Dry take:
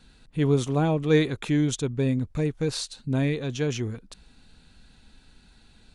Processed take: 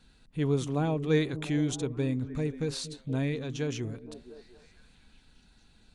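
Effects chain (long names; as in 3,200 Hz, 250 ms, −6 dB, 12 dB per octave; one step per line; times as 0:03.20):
echo through a band-pass that steps 233 ms, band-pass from 200 Hz, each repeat 0.7 octaves, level −9 dB
0:01.12–0:02.07: one half of a high-frequency compander encoder only
level −5.5 dB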